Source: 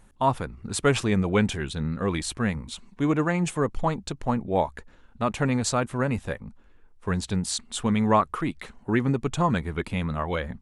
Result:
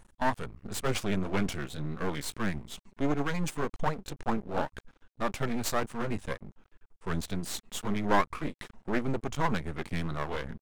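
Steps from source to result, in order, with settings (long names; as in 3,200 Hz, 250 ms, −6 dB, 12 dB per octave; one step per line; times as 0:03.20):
pitch shifter swept by a sawtooth −1.5 semitones, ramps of 556 ms
half-wave rectification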